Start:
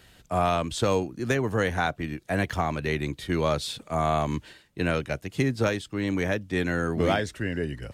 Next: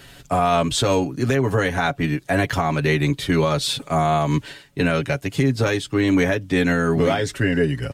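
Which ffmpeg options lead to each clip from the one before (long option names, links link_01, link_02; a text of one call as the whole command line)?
ffmpeg -i in.wav -af "aecho=1:1:7.2:0.66,alimiter=limit=-18.5dB:level=0:latency=1:release=178,volume=9dB" out.wav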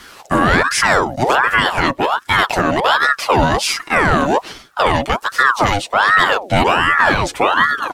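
ffmpeg -i in.wav -af "aeval=exprs='val(0)*sin(2*PI*990*n/s+990*0.6/1.3*sin(2*PI*1.3*n/s))':channel_layout=same,volume=8dB" out.wav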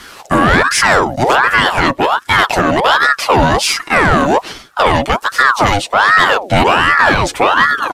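ffmpeg -i in.wav -af "aresample=32000,aresample=44100,asoftclip=type=tanh:threshold=-5dB,volume=4.5dB" out.wav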